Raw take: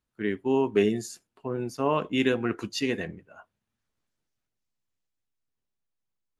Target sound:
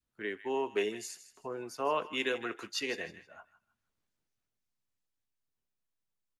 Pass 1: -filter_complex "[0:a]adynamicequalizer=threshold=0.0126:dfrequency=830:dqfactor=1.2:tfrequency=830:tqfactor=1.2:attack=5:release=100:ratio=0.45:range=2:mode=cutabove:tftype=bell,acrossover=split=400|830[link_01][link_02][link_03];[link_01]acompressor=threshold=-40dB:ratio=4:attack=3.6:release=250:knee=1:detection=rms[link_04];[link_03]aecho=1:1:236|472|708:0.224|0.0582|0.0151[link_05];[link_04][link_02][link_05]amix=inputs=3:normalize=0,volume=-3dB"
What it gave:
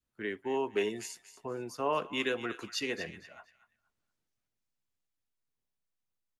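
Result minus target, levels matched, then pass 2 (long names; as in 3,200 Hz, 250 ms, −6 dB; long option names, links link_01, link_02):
echo 78 ms late; downward compressor: peak gain reduction −6.5 dB
-filter_complex "[0:a]adynamicequalizer=threshold=0.0126:dfrequency=830:dqfactor=1.2:tfrequency=830:tqfactor=1.2:attack=5:release=100:ratio=0.45:range=2:mode=cutabove:tftype=bell,acrossover=split=400|830[link_01][link_02][link_03];[link_01]acompressor=threshold=-49dB:ratio=4:attack=3.6:release=250:knee=1:detection=rms[link_04];[link_03]aecho=1:1:158|316|474:0.224|0.0582|0.0151[link_05];[link_04][link_02][link_05]amix=inputs=3:normalize=0,volume=-3dB"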